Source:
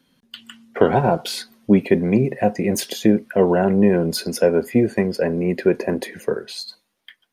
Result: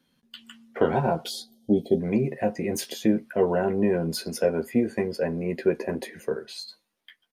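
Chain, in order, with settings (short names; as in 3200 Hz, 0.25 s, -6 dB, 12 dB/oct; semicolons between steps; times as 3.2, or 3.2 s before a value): spectral gain 1.28–2, 860–3000 Hz -26 dB; doubler 13 ms -6 dB; gain -7.5 dB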